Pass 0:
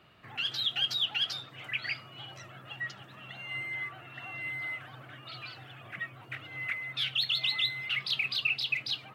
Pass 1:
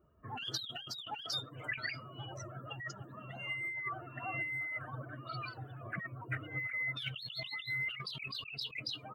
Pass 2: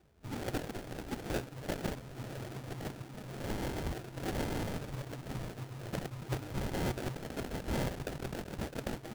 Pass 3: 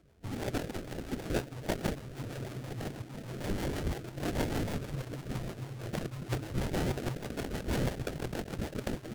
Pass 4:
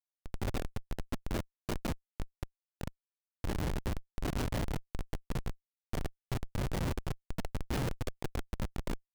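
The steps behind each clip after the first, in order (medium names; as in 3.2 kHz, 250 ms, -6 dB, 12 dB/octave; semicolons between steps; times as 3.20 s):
expander on every frequency bin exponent 2; compressor with a negative ratio -45 dBFS, ratio -1; trim +4.5 dB
sample-rate reducer 1.1 kHz, jitter 20%; trim +3 dB
rotary cabinet horn 6.3 Hz; vibrato with a chosen wave saw up 4 Hz, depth 160 cents; trim +4.5 dB
de-hum 167.7 Hz, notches 34; Schmitt trigger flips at -30 dBFS; trim +4 dB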